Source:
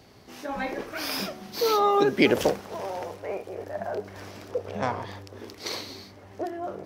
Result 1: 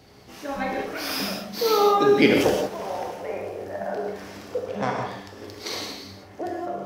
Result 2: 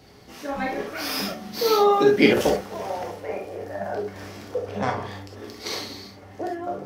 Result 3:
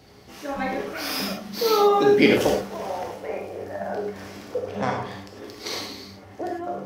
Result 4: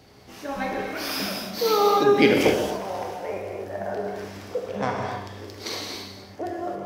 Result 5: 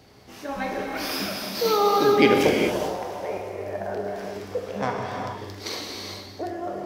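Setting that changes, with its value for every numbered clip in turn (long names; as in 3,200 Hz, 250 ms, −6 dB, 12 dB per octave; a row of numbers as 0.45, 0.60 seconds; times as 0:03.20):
reverb whose tail is shaped and stops, gate: 200, 90, 130, 300, 470 milliseconds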